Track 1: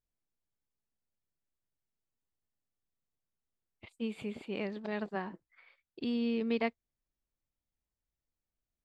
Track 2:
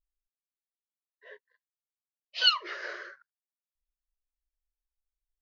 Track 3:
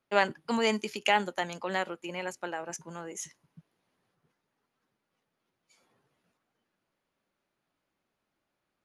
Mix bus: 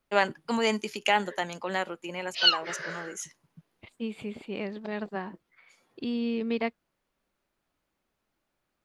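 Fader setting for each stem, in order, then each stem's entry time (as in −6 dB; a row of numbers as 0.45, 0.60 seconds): +2.5, +1.5, +1.0 decibels; 0.00, 0.00, 0.00 seconds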